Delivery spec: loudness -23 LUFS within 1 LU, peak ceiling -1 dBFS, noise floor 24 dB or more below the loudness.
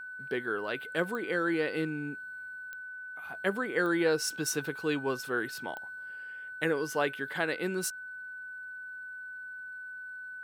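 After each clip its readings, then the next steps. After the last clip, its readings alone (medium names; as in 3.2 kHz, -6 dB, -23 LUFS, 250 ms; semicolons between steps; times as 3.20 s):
clicks found 4; steady tone 1.5 kHz; tone level -40 dBFS; loudness -33.5 LUFS; peak level -13.5 dBFS; loudness target -23.0 LUFS
-> de-click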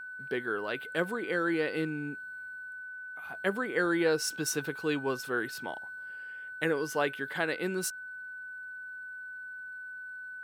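clicks found 0; steady tone 1.5 kHz; tone level -40 dBFS
-> band-stop 1.5 kHz, Q 30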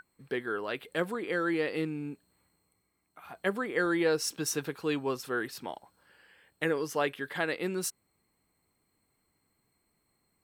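steady tone not found; loudness -32.5 LUFS; peak level -14.0 dBFS; loudness target -23.0 LUFS
-> trim +9.5 dB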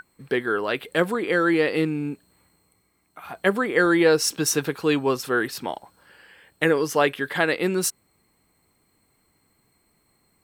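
loudness -23.0 LUFS; peak level -4.5 dBFS; noise floor -68 dBFS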